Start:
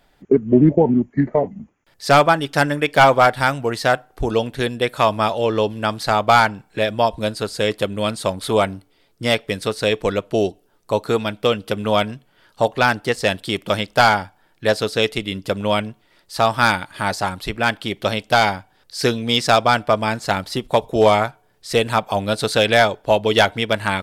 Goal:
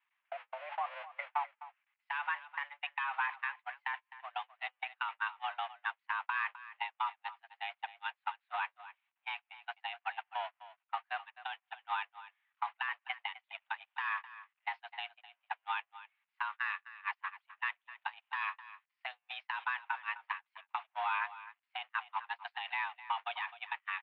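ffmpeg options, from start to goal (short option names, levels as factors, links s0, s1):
-filter_complex "[0:a]aeval=exprs='val(0)+0.5*0.0631*sgn(val(0))':c=same,agate=range=0.00501:threshold=0.178:ratio=16:detection=peak,tiltshelf=f=1300:g=-7.5,acompressor=threshold=0.0708:ratio=6,alimiter=limit=0.119:level=0:latency=1:release=271,asplit=2[s0][s1];[s1]aecho=0:1:257:0.168[s2];[s0][s2]amix=inputs=2:normalize=0,highpass=f=520:t=q:w=0.5412,highpass=f=520:t=q:w=1.307,lowpass=f=2500:t=q:w=0.5176,lowpass=f=2500:t=q:w=0.7071,lowpass=f=2500:t=q:w=1.932,afreqshift=280,volume=0.794"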